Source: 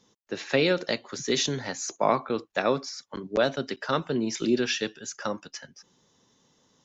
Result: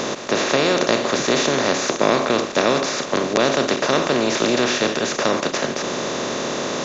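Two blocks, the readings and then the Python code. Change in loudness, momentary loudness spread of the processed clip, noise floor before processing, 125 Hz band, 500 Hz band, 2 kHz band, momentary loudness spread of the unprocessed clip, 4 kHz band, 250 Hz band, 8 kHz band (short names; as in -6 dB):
+8.5 dB, 6 LU, -67 dBFS, +6.0 dB, +9.0 dB, +10.5 dB, 13 LU, +10.0 dB, +8.0 dB, n/a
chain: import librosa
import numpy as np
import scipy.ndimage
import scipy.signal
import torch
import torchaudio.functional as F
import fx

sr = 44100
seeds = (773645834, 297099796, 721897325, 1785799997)

y = fx.bin_compress(x, sr, power=0.2)
y = y * librosa.db_to_amplitude(-1.0)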